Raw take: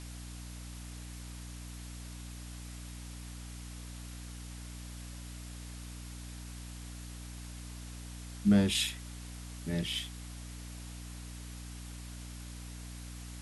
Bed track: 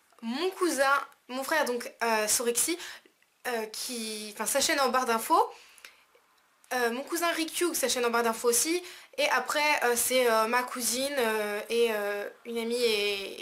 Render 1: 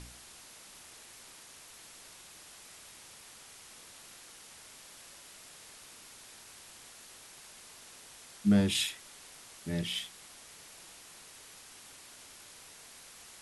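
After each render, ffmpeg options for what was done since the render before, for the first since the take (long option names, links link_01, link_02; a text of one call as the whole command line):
ffmpeg -i in.wav -af "bandreject=frequency=60:width_type=h:width=4,bandreject=frequency=120:width_type=h:width=4,bandreject=frequency=180:width_type=h:width=4,bandreject=frequency=240:width_type=h:width=4,bandreject=frequency=300:width_type=h:width=4" out.wav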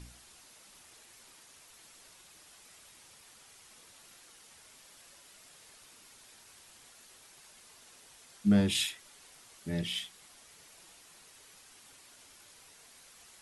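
ffmpeg -i in.wav -af "afftdn=noise_reduction=6:noise_floor=-53" out.wav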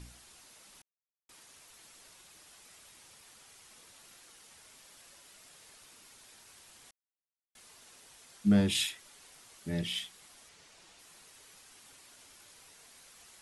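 ffmpeg -i in.wav -filter_complex "[0:a]asettb=1/sr,asplit=3[link_01][link_02][link_03];[link_01]atrim=end=10.494[link_04];[link_02]atrim=start=10.49:end=10.99,asetpts=PTS-STARTPTS,afade=type=in:duration=0.004:curve=qsin,afade=type=out:start_time=0.496:duration=0.004:curve=qsin,lowpass=7300[link_05];[link_03]atrim=start=10.986[link_06];[link_04][link_05]acrossfade=duration=0.004:curve1=hsin:curve2=qsin[link_07];[link_07][link_06]acrossfade=duration=0.004:curve1=qsin:curve2=hsin,asplit=5[link_08][link_09][link_10][link_11][link_12];[link_08]atrim=end=0.82,asetpts=PTS-STARTPTS,afade=type=out:start_time=0.816:duration=0.004:curve=hsin[link_13];[link_09]atrim=start=0.82:end=1.29,asetpts=PTS-STARTPTS,volume=0[link_14];[link_10]atrim=start=1.29:end=6.91,asetpts=PTS-STARTPTS,afade=type=in:duration=0.004:curve=hsin,afade=type=out:start_time=5.616:duration=0.004:curve=hsin[link_15];[link_11]atrim=start=6.91:end=7.55,asetpts=PTS-STARTPTS,volume=0[link_16];[link_12]atrim=start=7.55,asetpts=PTS-STARTPTS,afade=type=in:duration=0.004:curve=hsin[link_17];[link_13][link_14][link_15][link_16][link_17]concat=n=5:v=0:a=1" out.wav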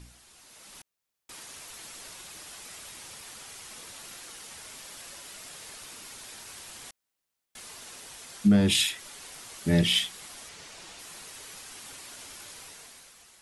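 ffmpeg -i in.wav -af "dynaudnorm=framelen=160:gausssize=9:maxgain=12dB,alimiter=limit=-12.5dB:level=0:latency=1:release=218" out.wav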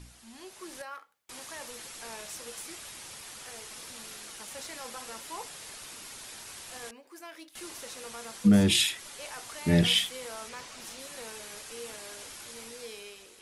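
ffmpeg -i in.wav -i bed.wav -filter_complex "[1:a]volume=-18dB[link_01];[0:a][link_01]amix=inputs=2:normalize=0" out.wav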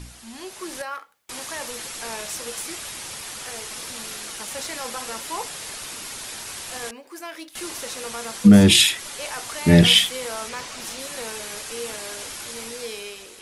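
ffmpeg -i in.wav -af "volume=10dB,alimiter=limit=-3dB:level=0:latency=1" out.wav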